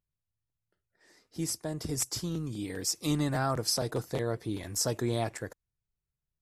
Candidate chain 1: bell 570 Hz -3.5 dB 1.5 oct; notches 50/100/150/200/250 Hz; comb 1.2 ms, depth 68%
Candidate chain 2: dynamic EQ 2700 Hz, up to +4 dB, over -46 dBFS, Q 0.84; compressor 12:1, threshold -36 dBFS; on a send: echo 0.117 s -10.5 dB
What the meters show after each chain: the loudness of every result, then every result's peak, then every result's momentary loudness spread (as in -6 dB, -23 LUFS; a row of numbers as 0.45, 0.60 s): -31.5, -40.5 LUFS; -13.5, -25.0 dBFS; 9, 5 LU